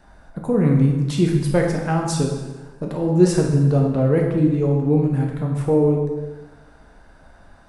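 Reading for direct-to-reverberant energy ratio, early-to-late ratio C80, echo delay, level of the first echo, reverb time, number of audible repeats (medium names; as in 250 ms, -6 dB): 0.0 dB, 5.5 dB, no echo, no echo, 1.2 s, no echo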